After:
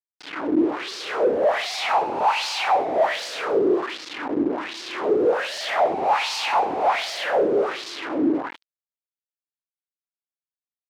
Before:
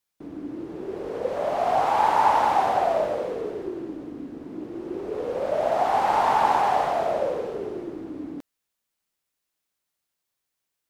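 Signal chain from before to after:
reverse bouncing-ball delay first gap 70 ms, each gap 1.15×, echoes 5
fuzz pedal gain 44 dB, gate −38 dBFS
auto-filter band-pass sine 1.3 Hz 320–4,900 Hz

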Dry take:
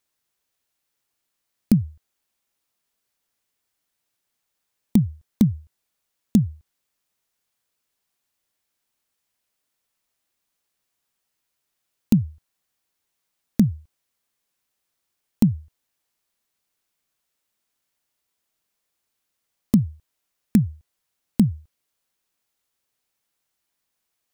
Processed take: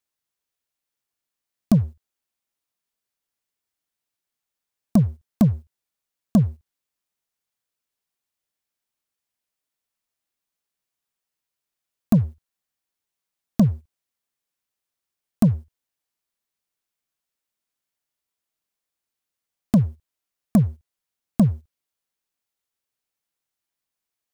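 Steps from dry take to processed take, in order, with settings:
leveller curve on the samples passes 2
level −3.5 dB

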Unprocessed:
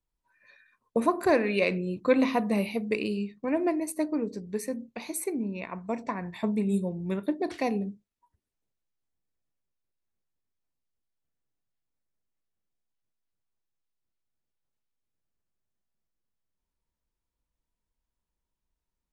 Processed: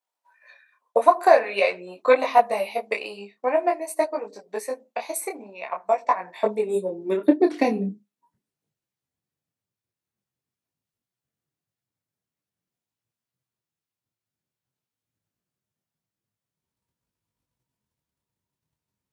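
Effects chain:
transient designer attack +7 dB, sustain −1 dB
high-pass filter sweep 690 Hz → 120 Hz, 0:06.09–0:08.79
micro pitch shift up and down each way 16 cents
level +5.5 dB

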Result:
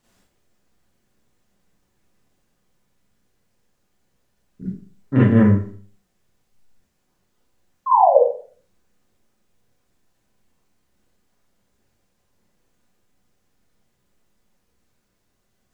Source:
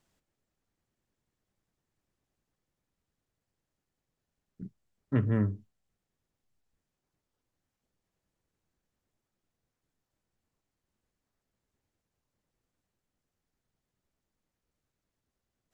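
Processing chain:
sound drawn into the spectrogram fall, 0:07.86–0:08.19, 460–1,100 Hz −27 dBFS
four-comb reverb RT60 0.47 s, combs from 31 ms, DRR −9 dB
level +5 dB

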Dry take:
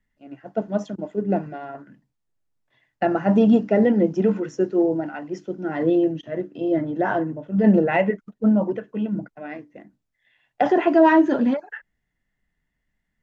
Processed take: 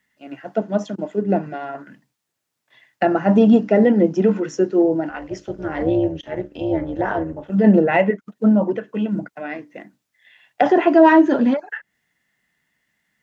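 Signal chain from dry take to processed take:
high-pass filter 130 Hz 12 dB per octave
0:05.09–0:07.50: amplitude modulation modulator 240 Hz, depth 55%
one half of a high-frequency compander encoder only
level +3.5 dB

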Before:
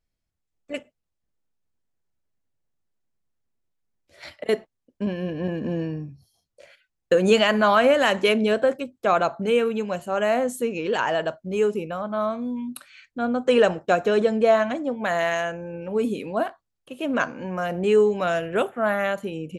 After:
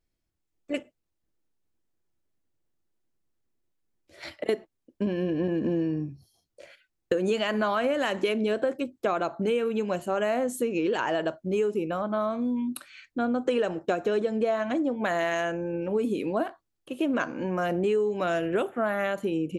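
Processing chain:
parametric band 330 Hz +8.5 dB 0.48 octaves
downward compressor 6 to 1, threshold −23 dBFS, peak gain reduction 12 dB

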